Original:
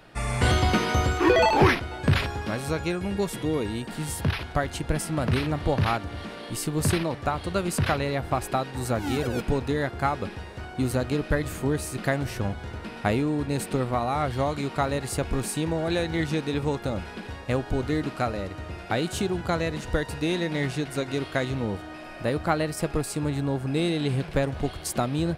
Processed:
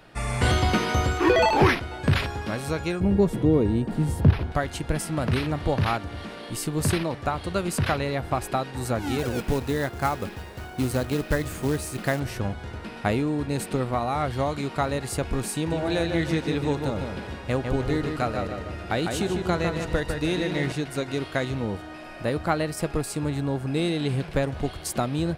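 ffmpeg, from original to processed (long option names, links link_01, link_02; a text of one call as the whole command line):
ffmpeg -i in.wav -filter_complex "[0:a]asettb=1/sr,asplit=3[link_01][link_02][link_03];[link_01]atrim=end=3.004[link_04];[link_02]atrim=start=3:end=4.52,asetpts=PTS-STARTPTS,afade=type=in:duration=0.004:curve=qsin,afade=type=out:start_time=1.516:duration=0.004:curve=qsin,tiltshelf=frequency=970:gain=9[link_05];[link_03]atrim=start=4.516[link_06];[link_04][link_05]acrossfade=duration=0.004:curve1=hsin:curve2=qsin[link_07];[link_07][link_06]acrossfade=duration=0.004:curve1=qsin:curve2=hsin,asettb=1/sr,asplit=3[link_08][link_09][link_10];[link_08]atrim=end=9.184[link_11];[link_09]atrim=start=9.18:end=12.2,asetpts=PTS-STARTPTS,afade=type=in:duration=0.004:curve=qsin,afade=type=out:start_time=3.016:duration=0.004:curve=qsin,acrusher=bits=4:mode=log:mix=0:aa=0.000001[link_12];[link_10]atrim=start=12.196[link_13];[link_11][link_12]acrossfade=duration=0.004:curve1=hsin:curve2=qsin[link_14];[link_14][link_13]acrossfade=duration=0.004:curve1=qsin:curve2=hsin,asettb=1/sr,asplit=3[link_15][link_16][link_17];[link_15]atrim=end=15.554[link_18];[link_16]atrim=start=15.55:end=20.72,asetpts=PTS-STARTPTS,afade=type=in:duration=0.004:curve=qsin,afade=type=out:start_time=5.166:duration=0.004:curve=qsin,asplit=2[link_19][link_20];[link_20]adelay=152,lowpass=frequency=4500:poles=1,volume=-5dB,asplit=2[link_21][link_22];[link_22]adelay=152,lowpass=frequency=4500:poles=1,volume=0.42,asplit=2[link_23][link_24];[link_24]adelay=152,lowpass=frequency=4500:poles=1,volume=0.42,asplit=2[link_25][link_26];[link_26]adelay=152,lowpass=frequency=4500:poles=1,volume=0.42,asplit=2[link_27][link_28];[link_28]adelay=152,lowpass=frequency=4500:poles=1,volume=0.42[link_29];[link_19][link_21][link_23][link_25][link_27][link_29]amix=inputs=6:normalize=0,atrim=end_sample=227997[link_30];[link_17]atrim=start=20.716[link_31];[link_18][link_30]acrossfade=duration=0.004:curve1=hsin:curve2=qsin[link_32];[link_32][link_31]acrossfade=duration=0.004:curve1=qsin:curve2=hsin" out.wav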